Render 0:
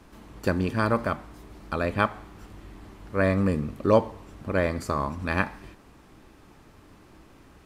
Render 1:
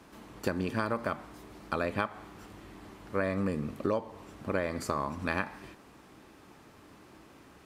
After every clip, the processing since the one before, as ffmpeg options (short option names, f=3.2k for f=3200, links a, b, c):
-af "highpass=f=170:p=1,acompressor=threshold=-26dB:ratio=10"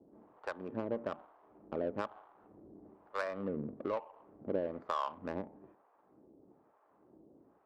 -filter_complex "[0:a]acrossover=split=640[a][b];[a]aeval=exprs='val(0)*(1-1/2+1/2*cos(2*PI*1.1*n/s))':c=same[c];[b]aeval=exprs='val(0)*(1-1/2-1/2*cos(2*PI*1.1*n/s))':c=same[d];[c][d]amix=inputs=2:normalize=0,bandpass=f=680:t=q:w=0.71:csg=0,adynamicsmooth=sensitivity=5.5:basefreq=680,volume=2.5dB"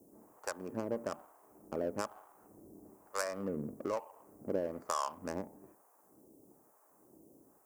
-af "aexciter=amount=12.7:drive=6.9:freq=5.6k"